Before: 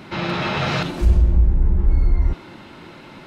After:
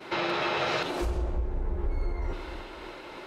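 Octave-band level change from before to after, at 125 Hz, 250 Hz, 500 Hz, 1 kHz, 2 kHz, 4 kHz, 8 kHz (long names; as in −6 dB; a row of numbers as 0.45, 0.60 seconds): −16.0 dB, −8.5 dB, −2.5 dB, −3.5 dB, −4.5 dB, −5.0 dB, can't be measured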